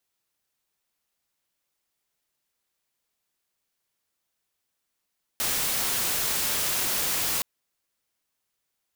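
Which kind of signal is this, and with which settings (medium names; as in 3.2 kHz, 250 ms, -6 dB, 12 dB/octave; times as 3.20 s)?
noise white, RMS -26.5 dBFS 2.02 s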